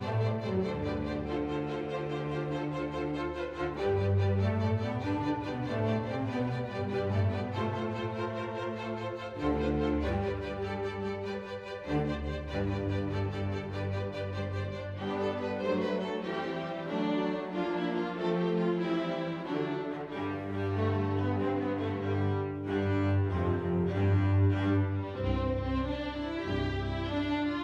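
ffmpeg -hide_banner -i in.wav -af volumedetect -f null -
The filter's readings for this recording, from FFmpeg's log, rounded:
mean_volume: -31.4 dB
max_volume: -16.4 dB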